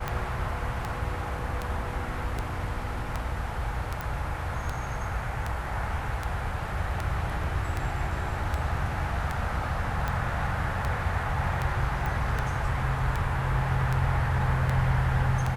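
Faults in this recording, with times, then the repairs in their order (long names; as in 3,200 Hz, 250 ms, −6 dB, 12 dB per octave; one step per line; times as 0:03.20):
scratch tick 78 rpm −16 dBFS
0:04.01: click
0:12.06: click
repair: click removal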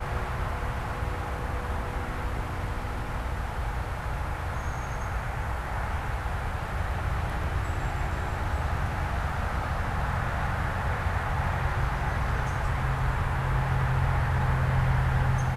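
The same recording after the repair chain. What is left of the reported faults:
none of them is left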